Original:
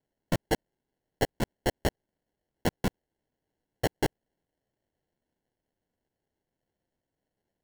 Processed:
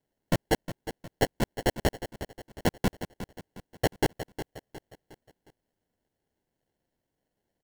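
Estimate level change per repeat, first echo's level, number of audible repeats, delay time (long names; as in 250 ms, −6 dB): −7.5 dB, −12.0 dB, 4, 360 ms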